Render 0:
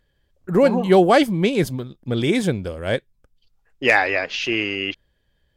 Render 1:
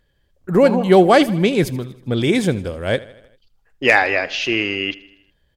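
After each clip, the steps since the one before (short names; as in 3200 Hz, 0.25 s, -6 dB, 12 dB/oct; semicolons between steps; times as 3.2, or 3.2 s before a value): feedback echo 79 ms, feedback 58%, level -19.5 dB; gain +2.5 dB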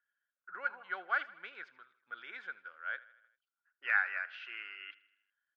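ladder band-pass 1500 Hz, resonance 85%; air absorption 140 m; gain -8 dB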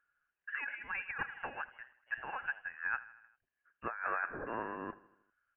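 negative-ratio compressor -39 dBFS, ratio -1; inverted band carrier 3100 Hz; gain +2.5 dB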